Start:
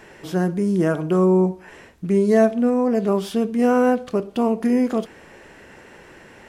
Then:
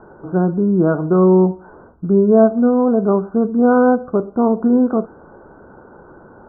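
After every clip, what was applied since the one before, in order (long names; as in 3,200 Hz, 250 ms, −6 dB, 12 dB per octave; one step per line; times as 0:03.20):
Chebyshev low-pass filter 1,500 Hz, order 8
level +5 dB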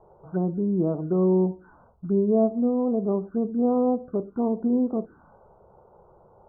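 phaser swept by the level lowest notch 250 Hz, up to 1,500 Hz, full sweep at −13 dBFS
level −8.5 dB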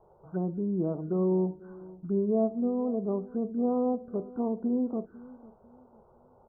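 repeating echo 499 ms, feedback 33%, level −20 dB
level −5.5 dB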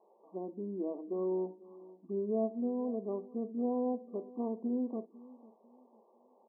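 linear-phase brick-wall band-pass 200–1,200 Hz
level −5.5 dB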